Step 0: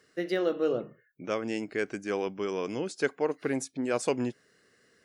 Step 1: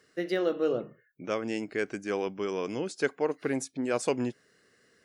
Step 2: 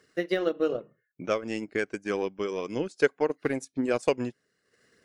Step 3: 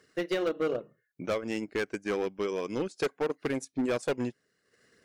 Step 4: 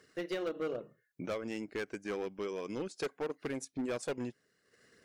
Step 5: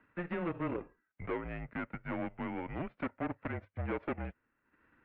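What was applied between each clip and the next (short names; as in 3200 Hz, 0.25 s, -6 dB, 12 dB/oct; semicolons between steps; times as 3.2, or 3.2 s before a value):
nothing audible
transient shaper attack +5 dB, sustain -10 dB; phaser 1.8 Hz, delay 2.2 ms, feedback 24%
hard clip -24 dBFS, distortion -8 dB
limiter -31 dBFS, peak gain reduction 7 dB
spectral whitening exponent 0.6; dynamic EQ 710 Hz, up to +7 dB, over -54 dBFS, Q 2.5; mistuned SSB -170 Hz 200–2500 Hz; gain -1 dB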